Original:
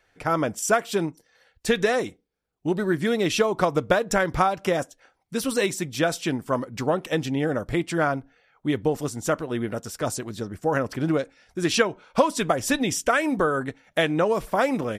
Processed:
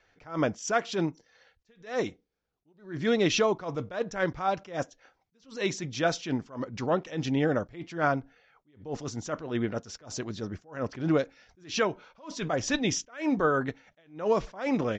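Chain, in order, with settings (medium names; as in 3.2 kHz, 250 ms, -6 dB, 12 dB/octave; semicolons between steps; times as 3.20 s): steep low-pass 6.8 kHz 72 dB/octave; attacks held to a fixed rise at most 160 dB/s; trim -1 dB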